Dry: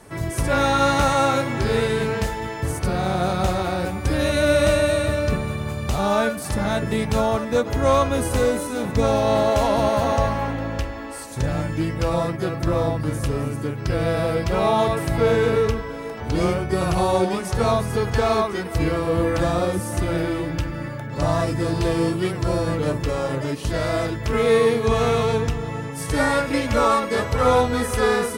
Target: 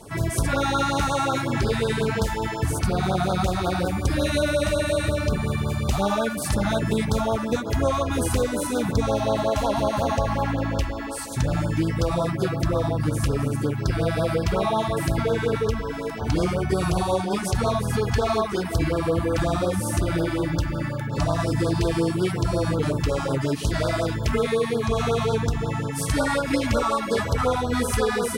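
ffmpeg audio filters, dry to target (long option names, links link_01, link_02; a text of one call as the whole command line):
ffmpeg -i in.wav -af "acompressor=threshold=-21dB:ratio=6,afftfilt=real='re*(1-between(b*sr/1024,400*pow(2400/400,0.5+0.5*sin(2*PI*5.5*pts/sr))/1.41,400*pow(2400/400,0.5+0.5*sin(2*PI*5.5*pts/sr))*1.41))':imag='im*(1-between(b*sr/1024,400*pow(2400/400,0.5+0.5*sin(2*PI*5.5*pts/sr))/1.41,400*pow(2400/400,0.5+0.5*sin(2*PI*5.5*pts/sr))*1.41))':win_size=1024:overlap=0.75,volume=3dB" out.wav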